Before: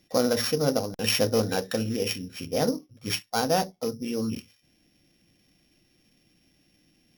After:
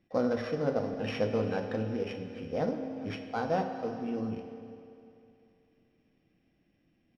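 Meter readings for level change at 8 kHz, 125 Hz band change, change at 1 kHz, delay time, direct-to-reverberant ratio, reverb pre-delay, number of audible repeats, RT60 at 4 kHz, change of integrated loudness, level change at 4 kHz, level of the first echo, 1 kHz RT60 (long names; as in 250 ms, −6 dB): below −25 dB, −5.0 dB, −4.5 dB, 402 ms, 6.0 dB, 13 ms, 1, 2.5 s, −6.0 dB, −17.5 dB, −20.0 dB, 2.7 s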